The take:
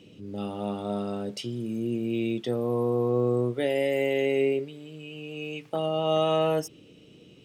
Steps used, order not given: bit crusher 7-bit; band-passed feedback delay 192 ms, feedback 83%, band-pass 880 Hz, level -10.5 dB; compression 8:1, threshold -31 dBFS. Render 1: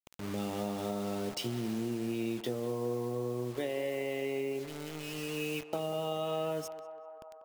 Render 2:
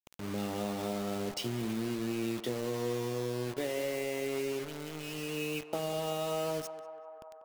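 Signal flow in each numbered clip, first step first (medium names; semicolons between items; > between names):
bit crusher > compression > band-passed feedback delay; compression > bit crusher > band-passed feedback delay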